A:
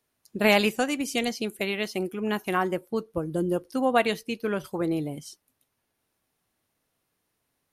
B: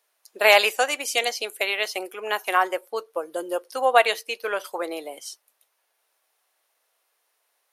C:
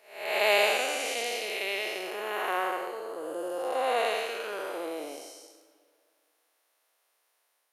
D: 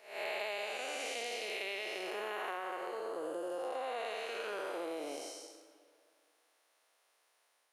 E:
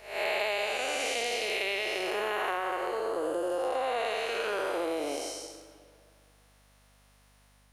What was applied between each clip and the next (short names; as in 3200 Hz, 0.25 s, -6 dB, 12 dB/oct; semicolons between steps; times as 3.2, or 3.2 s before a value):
HPF 520 Hz 24 dB/oct; gain +6.5 dB
time blur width 0.365 s; on a send at -14.5 dB: reverb RT60 2.1 s, pre-delay 40 ms
bell 14000 Hz -14.5 dB 0.38 oct; compressor 10:1, threshold -37 dBFS, peak gain reduction 18 dB; gain +1 dB
hum 50 Hz, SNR 31 dB; gain +8.5 dB